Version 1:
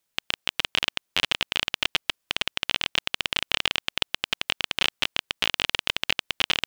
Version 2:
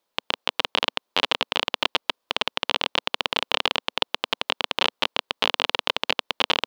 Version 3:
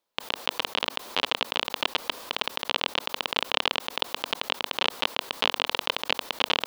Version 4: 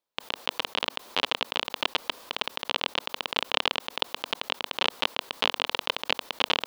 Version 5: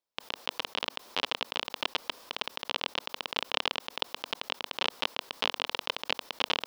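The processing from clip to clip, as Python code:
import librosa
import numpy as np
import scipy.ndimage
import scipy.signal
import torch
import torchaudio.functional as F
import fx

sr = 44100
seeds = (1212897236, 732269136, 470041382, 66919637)

y1 = fx.graphic_eq(x, sr, hz=(125, 250, 500, 1000, 4000, 8000), db=(-5, 8, 11, 12, 7, -3))
y1 = y1 * 10.0 ** (-4.5 / 20.0)
y2 = fx.sustainer(y1, sr, db_per_s=69.0)
y2 = y2 * 10.0 ** (-4.0 / 20.0)
y3 = fx.upward_expand(y2, sr, threshold_db=-37.0, expansion=1.5)
y3 = y3 * 10.0 ** (1.5 / 20.0)
y4 = fx.peak_eq(y3, sr, hz=5300.0, db=5.0, octaves=0.24)
y4 = y4 * 10.0 ** (-4.5 / 20.0)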